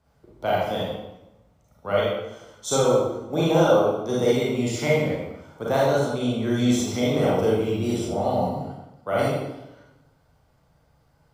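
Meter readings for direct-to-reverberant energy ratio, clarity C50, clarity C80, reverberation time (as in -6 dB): -6.0 dB, -1.5 dB, 2.5 dB, 0.95 s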